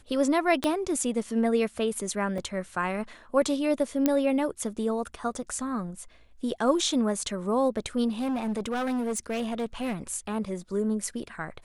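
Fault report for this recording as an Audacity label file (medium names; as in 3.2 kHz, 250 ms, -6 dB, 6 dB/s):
0.640000	0.640000	pop -12 dBFS
2.380000	2.380000	dropout 3.2 ms
4.060000	4.060000	pop -9 dBFS
8.080000	9.960000	clipped -25.5 dBFS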